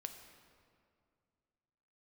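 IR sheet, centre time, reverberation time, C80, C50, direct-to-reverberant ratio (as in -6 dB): 31 ms, 2.3 s, 8.5 dB, 7.5 dB, 6.0 dB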